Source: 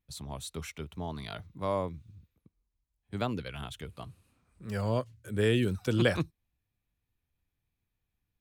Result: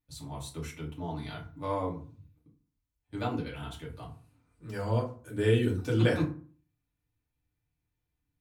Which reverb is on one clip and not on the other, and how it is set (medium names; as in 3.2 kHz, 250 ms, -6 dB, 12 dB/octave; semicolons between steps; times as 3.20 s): FDN reverb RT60 0.42 s, low-frequency decay 1.25×, high-frequency decay 0.55×, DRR -4.5 dB; trim -6.5 dB